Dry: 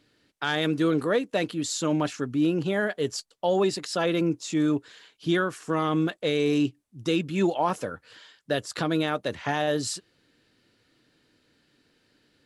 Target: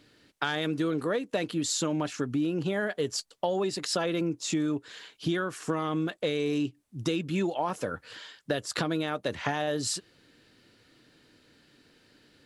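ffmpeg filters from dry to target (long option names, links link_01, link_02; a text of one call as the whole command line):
ffmpeg -i in.wav -af "acompressor=threshold=-31dB:ratio=6,volume=5dB" out.wav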